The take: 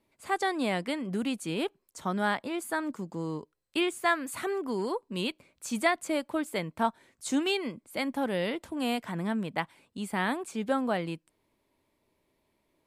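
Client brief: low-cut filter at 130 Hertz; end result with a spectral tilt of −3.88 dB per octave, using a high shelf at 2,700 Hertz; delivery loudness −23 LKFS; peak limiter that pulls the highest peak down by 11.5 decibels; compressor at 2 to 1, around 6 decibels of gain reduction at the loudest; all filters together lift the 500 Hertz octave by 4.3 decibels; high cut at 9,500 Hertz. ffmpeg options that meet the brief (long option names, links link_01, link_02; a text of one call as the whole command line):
ffmpeg -i in.wav -af "highpass=130,lowpass=9500,equalizer=frequency=500:width_type=o:gain=5.5,highshelf=frequency=2700:gain=6,acompressor=threshold=-29dB:ratio=2,volume=12.5dB,alimiter=limit=-12.5dB:level=0:latency=1" out.wav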